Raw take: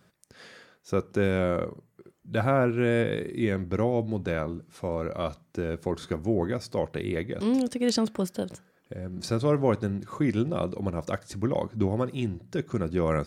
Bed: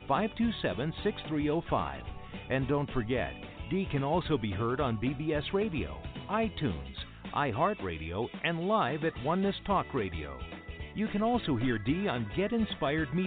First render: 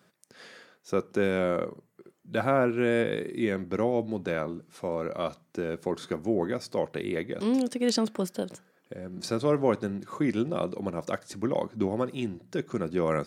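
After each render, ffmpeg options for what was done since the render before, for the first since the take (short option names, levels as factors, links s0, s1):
-af "highpass=180"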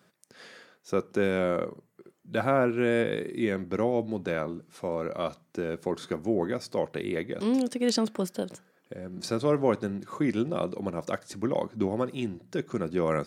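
-af anull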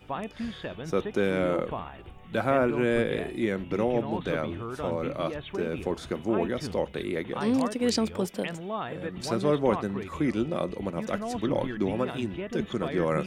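-filter_complex "[1:a]volume=0.562[s0];[0:a][s0]amix=inputs=2:normalize=0"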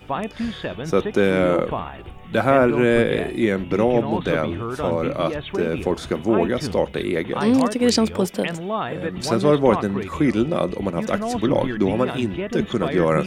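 -af "volume=2.51"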